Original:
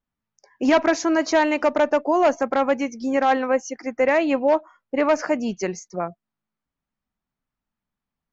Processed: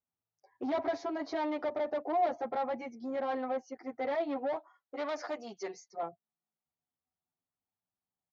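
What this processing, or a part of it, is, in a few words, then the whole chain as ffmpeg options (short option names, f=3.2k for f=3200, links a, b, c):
barber-pole flanger into a guitar amplifier: -filter_complex "[0:a]asplit=2[a][b];[b]adelay=8.8,afreqshift=0.27[c];[a][c]amix=inputs=2:normalize=1,asoftclip=type=tanh:threshold=-22.5dB,highpass=82,equalizer=f=100:t=q:w=4:g=5,equalizer=f=210:t=q:w=4:g=-4,equalizer=f=390:t=q:w=4:g=5,equalizer=f=740:t=q:w=4:g=9,equalizer=f=1.6k:t=q:w=4:g=-4,equalizer=f=2.7k:t=q:w=4:g=-10,lowpass=f=4.3k:w=0.5412,lowpass=f=4.3k:w=1.3066,asettb=1/sr,asplit=3[d][e][f];[d]atrim=end=4.564[g];[e]atrim=start=4.56:end=6.03,asetpts=PTS-STARTPTS,afade=t=in:d=0.004:c=qsin,afade=t=out:st=1.466:d=0.004:c=qsin,aemphasis=mode=production:type=riaa[h];[f]atrim=start=6.026[i];[g][h]acrossfade=d=0.004:c1=hsin:c2=qsin[j];[j][i]acrossfade=d=0.004:c1=qsin:c2=hsin,volume=-8.5dB"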